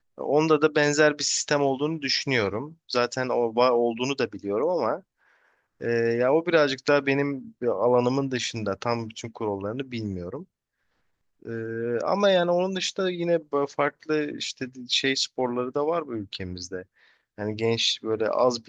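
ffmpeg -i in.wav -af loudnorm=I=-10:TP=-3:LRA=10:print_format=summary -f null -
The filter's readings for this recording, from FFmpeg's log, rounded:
Input Integrated:    -25.3 LUFS
Input True Peak:      -5.9 dBTP
Input LRA:             3.8 LU
Input Threshold:     -35.8 LUFS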